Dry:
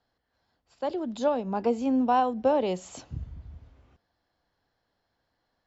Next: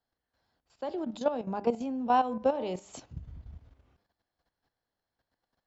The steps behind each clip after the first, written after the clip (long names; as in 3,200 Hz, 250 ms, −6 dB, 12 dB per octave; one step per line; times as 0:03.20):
hum removal 100.9 Hz, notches 27
output level in coarse steps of 11 dB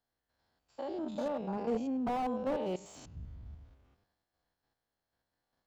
spectrum averaged block by block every 100 ms
slew-rate limiting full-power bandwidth 19 Hz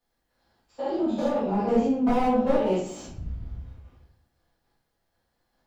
convolution reverb RT60 0.60 s, pre-delay 4 ms, DRR −8 dB
level +1 dB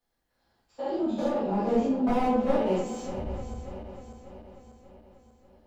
feedback delay that plays each chunk backwards 295 ms, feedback 71%, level −12 dB
level −2.5 dB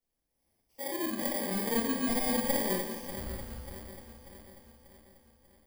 samples in bit-reversed order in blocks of 32 samples
on a send: single-tap delay 170 ms −11.5 dB
on the sum: level −5.5 dB